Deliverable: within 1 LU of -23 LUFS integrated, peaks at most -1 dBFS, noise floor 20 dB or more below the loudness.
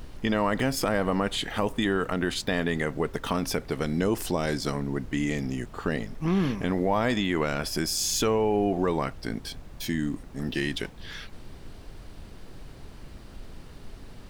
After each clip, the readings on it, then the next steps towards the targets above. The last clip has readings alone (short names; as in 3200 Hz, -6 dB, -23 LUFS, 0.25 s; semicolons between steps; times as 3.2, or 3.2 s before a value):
noise floor -46 dBFS; noise floor target -48 dBFS; loudness -28.0 LUFS; peak -12.5 dBFS; loudness target -23.0 LUFS
-> noise print and reduce 6 dB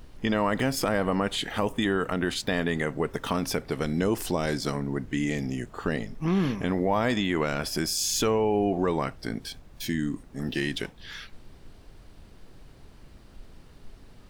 noise floor -51 dBFS; loudness -28.0 LUFS; peak -12.5 dBFS; loudness target -23.0 LUFS
-> gain +5 dB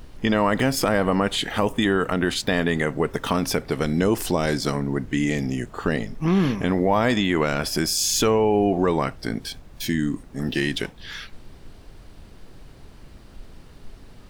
loudness -23.0 LUFS; peak -7.5 dBFS; noise floor -46 dBFS